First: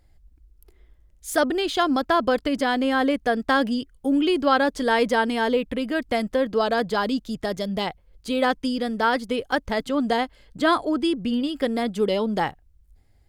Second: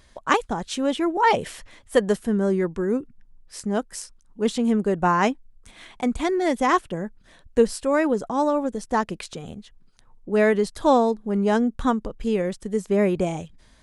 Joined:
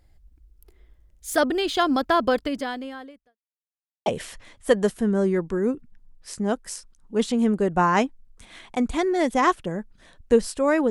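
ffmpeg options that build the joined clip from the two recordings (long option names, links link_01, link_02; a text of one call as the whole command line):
ffmpeg -i cue0.wav -i cue1.wav -filter_complex "[0:a]apad=whole_dur=10.9,atrim=end=10.9,asplit=2[link_01][link_02];[link_01]atrim=end=3.38,asetpts=PTS-STARTPTS,afade=type=out:start_time=2.32:duration=1.06:curve=qua[link_03];[link_02]atrim=start=3.38:end=4.06,asetpts=PTS-STARTPTS,volume=0[link_04];[1:a]atrim=start=1.32:end=8.16,asetpts=PTS-STARTPTS,afade=type=in:duration=0.004:curve=hsin[link_05];[link_03][link_04][link_05]concat=n=3:v=0:a=1" out.wav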